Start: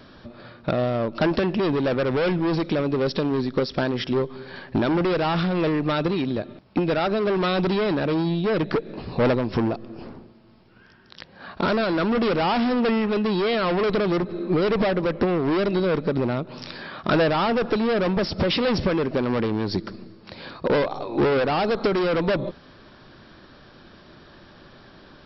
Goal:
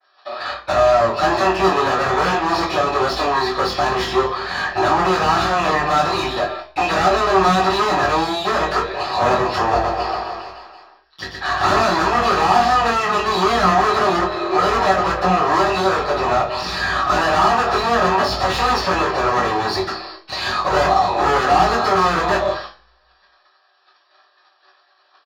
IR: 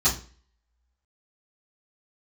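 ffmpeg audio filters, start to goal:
-filter_complex "[0:a]agate=range=-32dB:threshold=-43dB:ratio=16:detection=peak,highpass=f=580:w=0.5412,highpass=f=580:w=1.3066,highshelf=f=2.5k:g=11.5,aeval=exprs='(tanh(17.8*val(0)+0.8)-tanh(0.8))/17.8':c=same,tremolo=f=22:d=0.4,asplit=2[a][b];[b]highpass=f=720:p=1,volume=25dB,asoftclip=type=tanh:threshold=-20.5dB[c];[a][c]amix=inputs=2:normalize=0,lowpass=f=1.3k:p=1,volume=-6dB,asplit=2[d][e];[e]adelay=21,volume=-4.5dB[f];[d][f]amix=inputs=2:normalize=0,asettb=1/sr,asplit=3[g][h][i];[g]atrim=end=9.584[j];[h]atrim=start=9.58:end=11.8,asetpts=PTS-STARTPTS,afade=t=in:d=0.004:c=qsin,afade=t=out:st=2.216:d=0.004:c=qsin,aecho=1:1:120|252|397.2|556.9|732.6:0.631|0.398|0.251|0.158|0.1,atrim=end_sample=97902[k];[i]atrim=start=11.796[l];[j][k]acrossfade=d=0.004:c1=hsin:c2=qsin[m];[m][l]acrossfade=d=0.004:c1=qsin:c2=hsin[n];[1:a]atrim=start_sample=2205[o];[n][o]afir=irnorm=-1:irlink=0,adynamicequalizer=threshold=0.0398:dfrequency=1900:dqfactor=0.7:tfrequency=1900:tqfactor=0.7:attack=5:release=100:ratio=0.375:range=1.5:mode=cutabove:tftype=highshelf,volume=-1dB"

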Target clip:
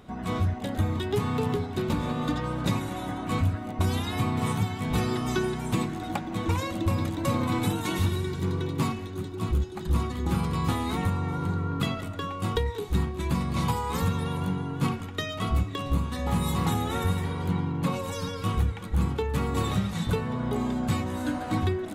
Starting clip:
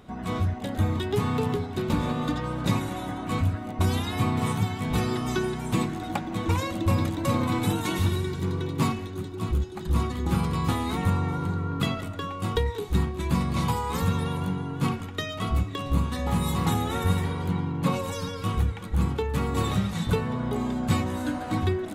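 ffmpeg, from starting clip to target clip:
-af "alimiter=limit=-15dB:level=0:latency=1:release=404"

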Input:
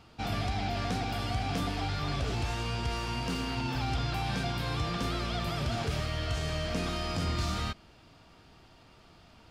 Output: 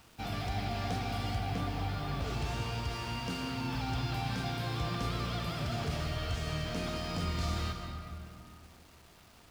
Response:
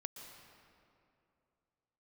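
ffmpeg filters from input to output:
-filter_complex "[0:a]asettb=1/sr,asplit=3[a][b][c];[a]atrim=end=1.384[d];[b]atrim=start=1.38:end=2.22,asetpts=PTS-STARTPTS,afade=t=in:d=0.004:c=qsin,afade=t=out:st=0.836:d=0.004:c=qsin,highshelf=f=3.8k:g=-8[e];[c]atrim=start=2.216[f];[d][e]acrossfade=d=0.004:c1=hsin:c2=qsin[g];[g][f]acrossfade=d=0.004:c1=qsin:c2=hsin,acrusher=bits=8:mix=0:aa=0.000001[h];[1:a]atrim=start_sample=2205[i];[h][i]afir=irnorm=-1:irlink=0"

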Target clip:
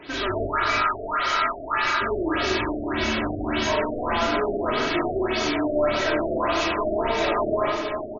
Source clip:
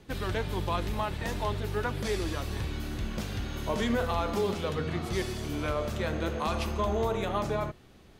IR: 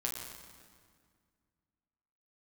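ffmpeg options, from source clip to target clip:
-filter_complex "[0:a]asplit=3[a][b][c];[a]afade=t=out:st=0.46:d=0.02[d];[b]aeval=exprs='val(0)*sin(2*PI*1300*n/s)':c=same,afade=t=in:st=0.46:d=0.02,afade=t=out:st=2:d=0.02[e];[c]afade=t=in:st=2:d=0.02[f];[d][e][f]amix=inputs=3:normalize=0,asplit=2[g][h];[h]highpass=f=720:p=1,volume=32dB,asoftclip=type=tanh:threshold=-17dB[i];[g][i]amix=inputs=2:normalize=0,lowpass=f=5.9k:p=1,volume=-6dB,aecho=1:1:3.1:0.69,asplit=2[j][k];[k]adelay=319,lowpass=f=4.5k:p=1,volume=-7dB,asplit=2[l][m];[m]adelay=319,lowpass=f=4.5k:p=1,volume=0.47,asplit=2[n][o];[o]adelay=319,lowpass=f=4.5k:p=1,volume=0.47,asplit=2[p][q];[q]adelay=319,lowpass=f=4.5k:p=1,volume=0.47,asplit=2[r][s];[s]adelay=319,lowpass=f=4.5k:p=1,volume=0.47,asplit=2[t][u];[u]adelay=319,lowpass=f=4.5k:p=1,volume=0.47[v];[l][n][p][r][t][v]amix=inputs=6:normalize=0[w];[j][w]amix=inputs=2:normalize=0,flanger=delay=6.4:depth=1.7:regen=-41:speed=1.8:shape=sinusoidal,asplit=2[x][y];[y]aecho=0:1:40|90|152.5|230.6|328.3:0.631|0.398|0.251|0.158|0.1[z];[x][z]amix=inputs=2:normalize=0,dynaudnorm=f=120:g=3:m=4.5dB,afftfilt=real='re*lt(b*sr/1024,710*pow(7200/710,0.5+0.5*sin(2*PI*1.7*pts/sr)))':imag='im*lt(b*sr/1024,710*pow(7200/710,0.5+0.5*sin(2*PI*1.7*pts/sr)))':win_size=1024:overlap=0.75,volume=-4.5dB"

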